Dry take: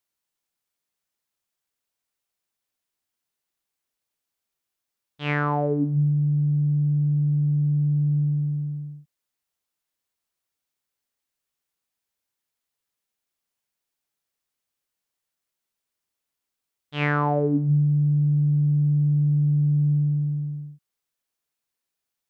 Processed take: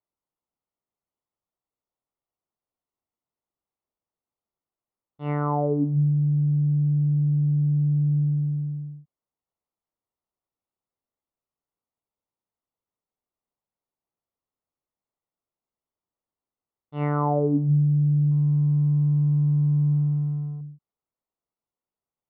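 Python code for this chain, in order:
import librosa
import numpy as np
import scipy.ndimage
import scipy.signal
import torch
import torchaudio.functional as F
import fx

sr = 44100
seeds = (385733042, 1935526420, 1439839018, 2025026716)

y = fx.law_mismatch(x, sr, coded='A', at=(18.31, 20.61))
y = scipy.signal.savgol_filter(y, 65, 4, mode='constant')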